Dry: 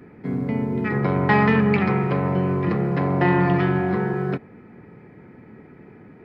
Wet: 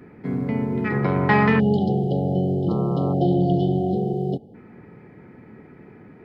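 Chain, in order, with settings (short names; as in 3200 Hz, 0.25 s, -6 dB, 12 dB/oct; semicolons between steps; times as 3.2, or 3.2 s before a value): 1.6–4.54 spectral delete 850–2900 Hz; 2.68–3.12 buzz 120 Hz, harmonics 11, -35 dBFS -1 dB/oct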